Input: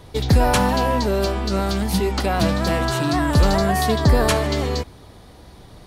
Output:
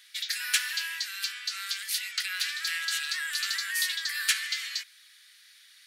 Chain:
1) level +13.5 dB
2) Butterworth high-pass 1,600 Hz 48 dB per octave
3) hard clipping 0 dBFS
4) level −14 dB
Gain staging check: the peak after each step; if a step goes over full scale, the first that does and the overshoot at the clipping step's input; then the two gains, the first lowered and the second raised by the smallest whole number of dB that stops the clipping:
+6.5, +4.0, 0.0, −14.0 dBFS
step 1, 4.0 dB
step 1 +9.5 dB, step 4 −10 dB

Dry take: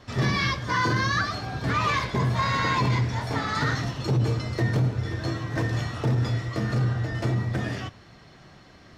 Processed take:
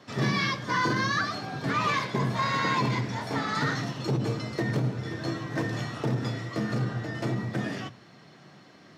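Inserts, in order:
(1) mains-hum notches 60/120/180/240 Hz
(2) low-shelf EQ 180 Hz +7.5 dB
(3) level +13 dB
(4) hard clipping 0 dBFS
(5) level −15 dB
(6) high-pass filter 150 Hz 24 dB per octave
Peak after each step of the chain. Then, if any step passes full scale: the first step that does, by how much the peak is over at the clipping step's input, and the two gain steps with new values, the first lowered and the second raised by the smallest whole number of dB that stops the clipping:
−13.0, −9.5, +3.5, 0.0, −15.0, −14.5 dBFS
step 3, 3.5 dB
step 3 +9 dB, step 5 −11 dB

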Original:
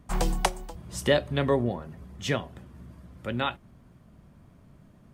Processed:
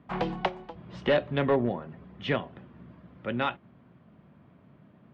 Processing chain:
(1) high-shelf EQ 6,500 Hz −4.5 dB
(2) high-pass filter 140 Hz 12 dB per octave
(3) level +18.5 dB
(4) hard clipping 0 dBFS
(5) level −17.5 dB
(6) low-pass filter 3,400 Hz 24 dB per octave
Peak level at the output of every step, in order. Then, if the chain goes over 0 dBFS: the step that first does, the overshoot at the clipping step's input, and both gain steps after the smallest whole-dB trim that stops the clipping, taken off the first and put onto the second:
−8.5, −8.5, +10.0, 0.0, −17.5, −15.5 dBFS
step 3, 10.0 dB
step 3 +8.5 dB, step 5 −7.5 dB

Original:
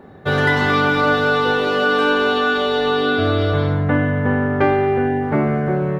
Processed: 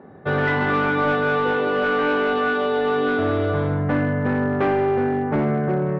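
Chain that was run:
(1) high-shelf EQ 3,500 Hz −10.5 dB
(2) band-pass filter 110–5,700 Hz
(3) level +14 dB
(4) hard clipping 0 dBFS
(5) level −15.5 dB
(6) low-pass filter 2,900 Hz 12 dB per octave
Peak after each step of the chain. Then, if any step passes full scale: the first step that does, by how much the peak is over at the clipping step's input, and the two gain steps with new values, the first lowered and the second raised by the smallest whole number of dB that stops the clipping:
−3.5, −4.5, +9.5, 0.0, −15.5, −15.0 dBFS
step 3, 9.5 dB
step 3 +4 dB, step 5 −5.5 dB

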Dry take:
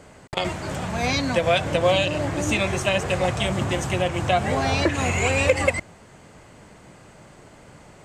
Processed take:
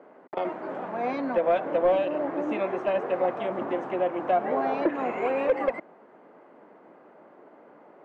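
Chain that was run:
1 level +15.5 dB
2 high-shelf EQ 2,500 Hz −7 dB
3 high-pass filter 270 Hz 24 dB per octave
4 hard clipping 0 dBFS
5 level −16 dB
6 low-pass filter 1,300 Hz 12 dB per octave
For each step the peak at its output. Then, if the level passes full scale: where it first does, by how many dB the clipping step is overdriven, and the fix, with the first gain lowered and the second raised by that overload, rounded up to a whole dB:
+9.0, +8.5, +9.5, 0.0, −16.0, −15.5 dBFS
step 1, 9.5 dB
step 1 +5.5 dB, step 5 −6 dB

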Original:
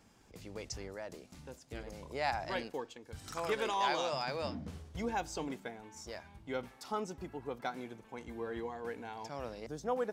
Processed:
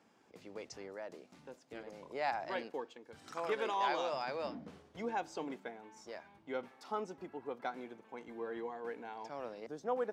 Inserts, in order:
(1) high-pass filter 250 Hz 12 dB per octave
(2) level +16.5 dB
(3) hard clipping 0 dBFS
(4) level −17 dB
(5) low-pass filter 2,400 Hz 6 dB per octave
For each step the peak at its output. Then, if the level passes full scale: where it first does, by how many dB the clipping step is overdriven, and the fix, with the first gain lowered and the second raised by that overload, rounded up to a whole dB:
−19.0, −2.5, −2.5, −19.5, −21.5 dBFS
no step passes full scale

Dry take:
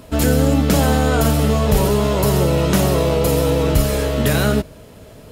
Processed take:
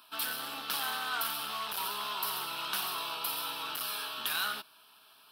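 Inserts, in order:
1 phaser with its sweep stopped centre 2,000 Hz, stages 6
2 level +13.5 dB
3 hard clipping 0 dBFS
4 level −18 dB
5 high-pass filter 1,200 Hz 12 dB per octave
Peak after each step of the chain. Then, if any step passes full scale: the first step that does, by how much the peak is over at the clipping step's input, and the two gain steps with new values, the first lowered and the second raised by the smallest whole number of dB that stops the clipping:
−4.5, +9.0, 0.0, −18.0, −17.0 dBFS
step 2, 9.0 dB
step 2 +4.5 dB, step 4 −9 dB

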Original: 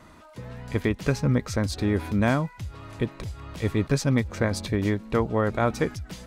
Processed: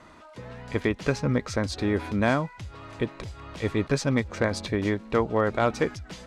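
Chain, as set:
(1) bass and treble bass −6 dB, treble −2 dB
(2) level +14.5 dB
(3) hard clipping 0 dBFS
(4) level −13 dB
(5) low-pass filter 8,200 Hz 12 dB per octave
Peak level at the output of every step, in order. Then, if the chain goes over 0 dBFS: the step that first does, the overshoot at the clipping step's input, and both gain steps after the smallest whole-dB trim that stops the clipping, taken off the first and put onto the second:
−10.5, +4.0, 0.0, −13.0, −13.0 dBFS
step 2, 4.0 dB
step 2 +10.5 dB, step 4 −9 dB

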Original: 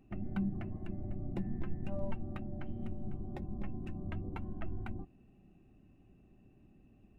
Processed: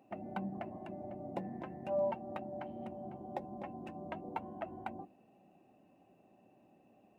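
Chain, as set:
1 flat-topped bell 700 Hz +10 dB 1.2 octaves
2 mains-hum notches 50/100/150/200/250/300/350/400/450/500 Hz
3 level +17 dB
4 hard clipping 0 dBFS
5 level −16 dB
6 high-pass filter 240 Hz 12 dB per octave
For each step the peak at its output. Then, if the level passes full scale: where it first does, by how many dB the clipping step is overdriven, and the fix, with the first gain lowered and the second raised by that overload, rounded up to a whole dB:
−21.0, −21.5, −4.5, −4.5, −20.5, −24.0 dBFS
no step passes full scale

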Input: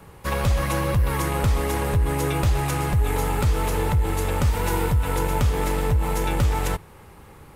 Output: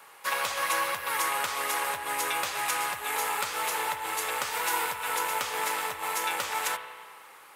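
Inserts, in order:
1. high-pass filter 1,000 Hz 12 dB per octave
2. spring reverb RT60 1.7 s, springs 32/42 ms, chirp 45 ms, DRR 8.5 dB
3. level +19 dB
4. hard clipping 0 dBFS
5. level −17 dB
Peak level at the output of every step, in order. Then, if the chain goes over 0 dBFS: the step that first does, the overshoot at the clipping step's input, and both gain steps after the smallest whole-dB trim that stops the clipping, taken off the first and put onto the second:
−12.5, −12.5, +6.5, 0.0, −17.0 dBFS
step 3, 6.5 dB
step 3 +12 dB, step 5 −10 dB

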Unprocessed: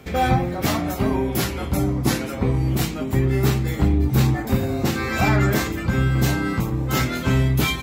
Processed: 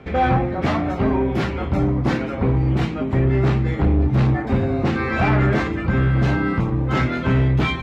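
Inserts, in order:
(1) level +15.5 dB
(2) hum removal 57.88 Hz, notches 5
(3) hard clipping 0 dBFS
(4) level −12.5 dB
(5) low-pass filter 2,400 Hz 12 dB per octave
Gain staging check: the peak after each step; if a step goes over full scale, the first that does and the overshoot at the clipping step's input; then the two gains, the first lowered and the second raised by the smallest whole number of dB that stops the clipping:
+9.0, +9.0, 0.0, −12.5, −12.0 dBFS
step 1, 9.0 dB
step 1 +6.5 dB, step 4 −3.5 dB

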